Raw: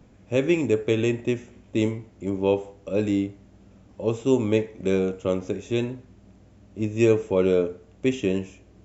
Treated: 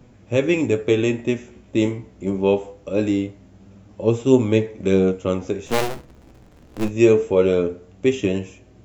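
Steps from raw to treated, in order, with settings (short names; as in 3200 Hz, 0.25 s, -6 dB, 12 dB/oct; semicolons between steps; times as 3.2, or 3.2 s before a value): 5.66–6.89 cycle switcher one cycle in 2, inverted; flange 0.23 Hz, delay 7.8 ms, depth 8.4 ms, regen +51%; gain +8 dB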